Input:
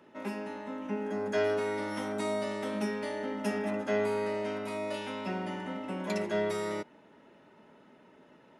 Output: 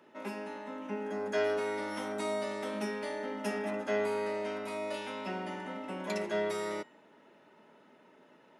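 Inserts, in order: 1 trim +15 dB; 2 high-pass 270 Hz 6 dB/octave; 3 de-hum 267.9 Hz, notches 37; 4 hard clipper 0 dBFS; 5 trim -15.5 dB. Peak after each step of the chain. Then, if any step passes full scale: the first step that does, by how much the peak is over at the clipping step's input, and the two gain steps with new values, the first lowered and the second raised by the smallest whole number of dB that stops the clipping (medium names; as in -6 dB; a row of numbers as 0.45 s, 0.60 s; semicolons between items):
-2.5 dBFS, -4.0 dBFS, -4.0 dBFS, -4.0 dBFS, -19.5 dBFS; nothing clips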